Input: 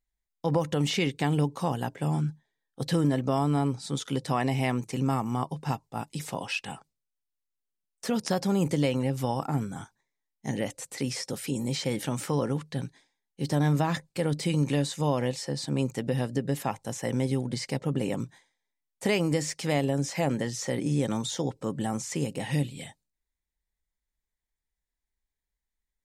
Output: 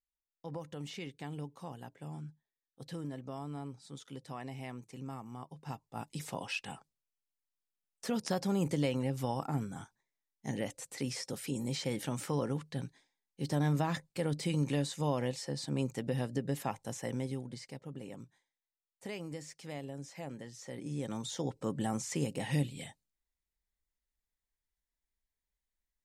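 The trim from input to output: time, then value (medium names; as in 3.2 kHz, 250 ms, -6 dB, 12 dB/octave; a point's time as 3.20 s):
5.46 s -16.5 dB
6.08 s -6 dB
16.94 s -6 dB
17.82 s -16.5 dB
20.53 s -16.5 dB
21.63 s -4 dB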